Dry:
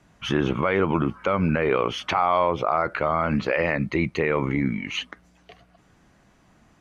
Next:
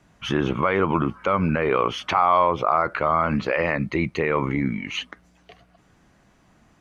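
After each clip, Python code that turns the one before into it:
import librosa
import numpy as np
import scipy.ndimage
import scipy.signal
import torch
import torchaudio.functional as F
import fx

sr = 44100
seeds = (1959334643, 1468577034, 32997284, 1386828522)

y = fx.dynamic_eq(x, sr, hz=1100.0, q=2.5, threshold_db=-34.0, ratio=4.0, max_db=5)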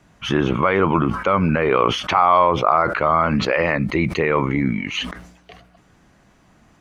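y = fx.sustainer(x, sr, db_per_s=77.0)
y = F.gain(torch.from_numpy(y), 3.5).numpy()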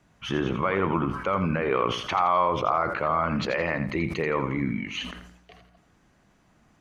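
y = fx.echo_feedback(x, sr, ms=84, feedback_pct=32, wet_db=-10.0)
y = F.gain(torch.from_numpy(y), -8.0).numpy()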